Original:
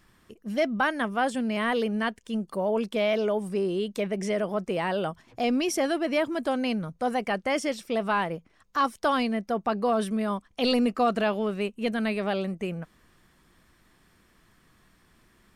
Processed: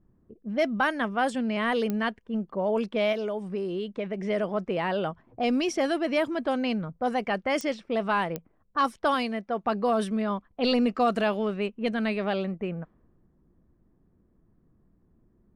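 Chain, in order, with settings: low-pass opened by the level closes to 400 Hz, open at -20.5 dBFS; 3.12–4.24 compressor 4:1, threshold -28 dBFS, peak gain reduction 5.5 dB; 9.14–9.64 low shelf 220 Hz -8.5 dB; 10.21–10.97 LPF 5500 Hz 12 dB/oct; pops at 1.9/7.61/8.36, -17 dBFS

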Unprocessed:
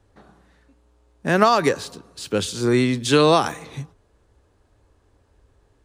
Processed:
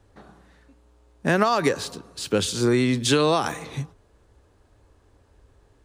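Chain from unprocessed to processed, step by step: compressor 6:1, threshold -18 dBFS, peak gain reduction 8 dB; gain +2 dB

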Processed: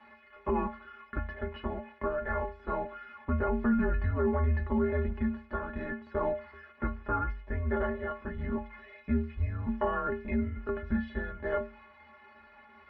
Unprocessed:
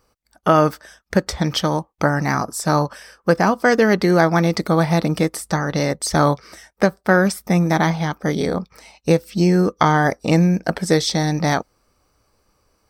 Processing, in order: switching spikes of -18.5 dBFS; metallic resonator 100 Hz, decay 0.59 s, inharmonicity 0.03; limiter -21.5 dBFS, peak gain reduction 8.5 dB; mistuned SSB -260 Hz 210–2400 Hz; gain +2.5 dB

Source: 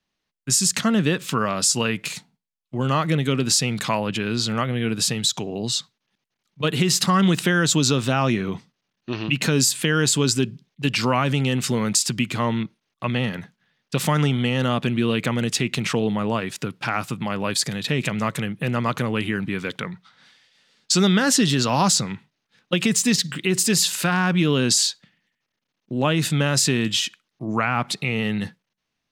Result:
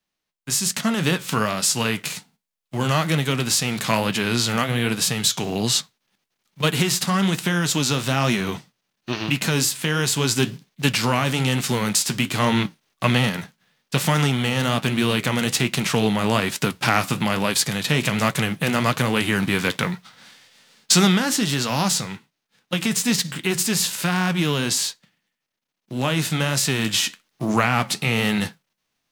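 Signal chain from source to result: spectral whitening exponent 0.6; vocal rider 0.5 s; flange 1.2 Hz, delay 4.2 ms, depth 8.9 ms, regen -66%; gain +4.5 dB

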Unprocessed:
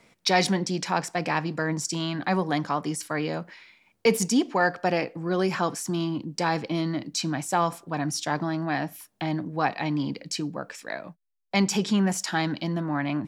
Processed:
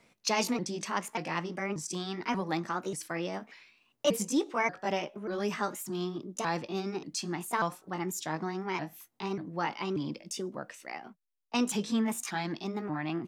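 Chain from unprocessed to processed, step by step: repeated pitch sweeps +4.5 st, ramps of 0.586 s; gain -5.5 dB

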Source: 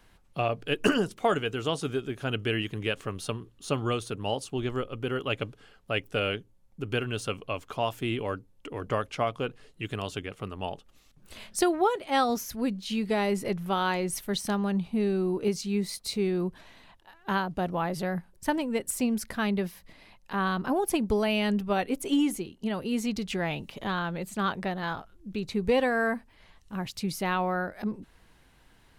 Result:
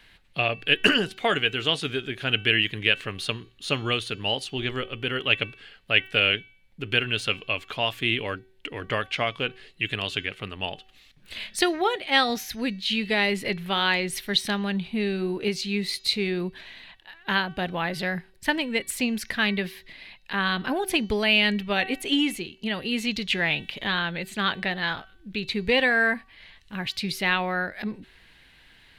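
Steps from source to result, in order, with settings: band shelf 2700 Hz +12 dB; de-hum 380.1 Hz, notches 19

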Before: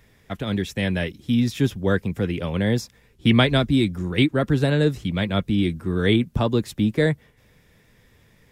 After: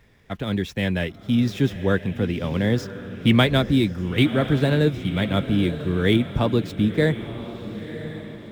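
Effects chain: median filter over 5 samples; diffused feedback echo 1.016 s, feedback 43%, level -12 dB

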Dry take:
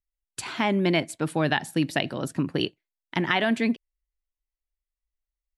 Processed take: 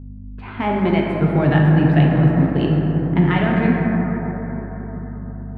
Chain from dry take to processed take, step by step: block floating point 5-bit; low-pass opened by the level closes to 1000 Hz, open at -23.5 dBFS; 1.09–3.41 bell 160 Hz +12.5 dB 0.77 oct; hum 50 Hz, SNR 13 dB; air absorption 470 m; plate-style reverb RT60 4.8 s, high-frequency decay 0.25×, DRR -3 dB; gain +2.5 dB

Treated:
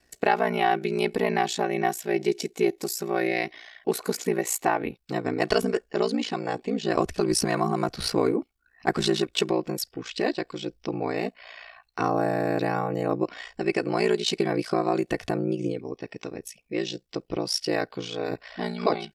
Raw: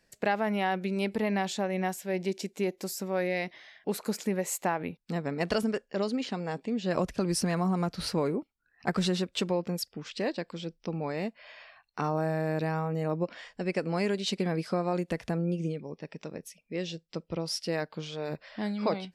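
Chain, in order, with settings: comb 2.7 ms, depth 55%; ring modulator 29 Hz; gain +7.5 dB

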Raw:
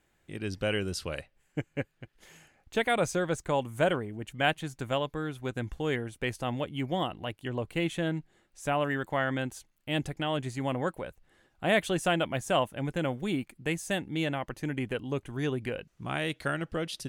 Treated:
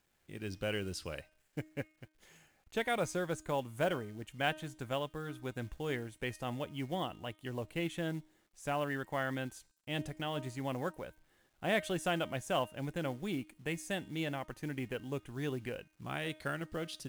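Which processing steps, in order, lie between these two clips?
companded quantiser 6-bit; de-hum 310.7 Hz, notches 35; gain -6.5 dB

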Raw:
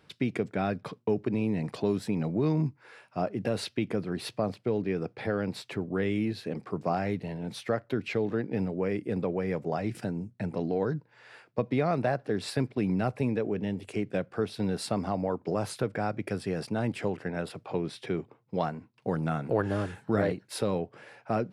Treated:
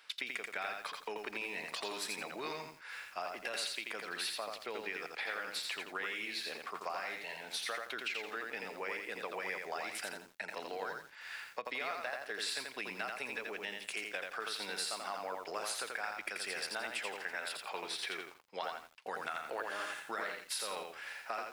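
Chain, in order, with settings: HPF 1400 Hz 12 dB/oct; compressor 10:1, threshold -43 dBFS, peak gain reduction 11 dB; lo-fi delay 85 ms, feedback 35%, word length 11-bit, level -3 dB; gain +7 dB

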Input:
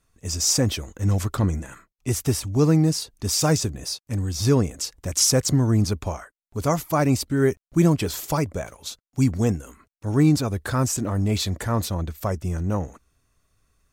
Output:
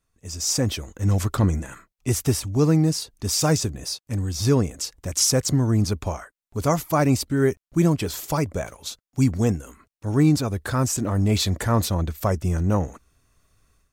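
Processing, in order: AGC; gain -7 dB

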